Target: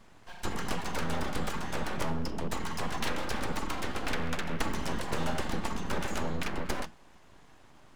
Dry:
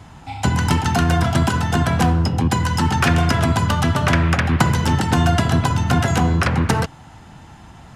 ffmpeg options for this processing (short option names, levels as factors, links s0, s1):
-af "flanger=delay=5.8:depth=3.1:regen=-84:speed=0.28:shape=sinusoidal,bandreject=f=50:t=h:w=6,bandreject=f=100:t=h:w=6,bandreject=f=150:t=h:w=6,aeval=exprs='abs(val(0))':c=same,volume=0.398"